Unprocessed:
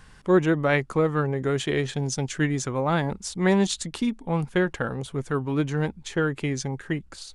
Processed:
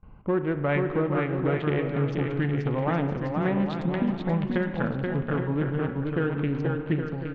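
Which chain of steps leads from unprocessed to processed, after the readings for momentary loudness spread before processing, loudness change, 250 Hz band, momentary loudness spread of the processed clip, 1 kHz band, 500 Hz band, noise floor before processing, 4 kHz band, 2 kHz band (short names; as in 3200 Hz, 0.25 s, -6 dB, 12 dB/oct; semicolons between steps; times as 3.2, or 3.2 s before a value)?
8 LU, -1.5 dB, -0.5 dB, 3 LU, -2.0 dB, -2.0 dB, -50 dBFS, -10.5 dB, -4.0 dB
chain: Wiener smoothing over 25 samples; LPF 2900 Hz 24 dB/oct; notch 400 Hz, Q 12; gate with hold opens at -43 dBFS; compressor 3:1, threshold -29 dBFS, peak gain reduction 11.5 dB; bouncing-ball echo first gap 0.48 s, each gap 0.7×, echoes 5; spring tank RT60 1.4 s, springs 35 ms, chirp 70 ms, DRR 9 dB; gain +3.5 dB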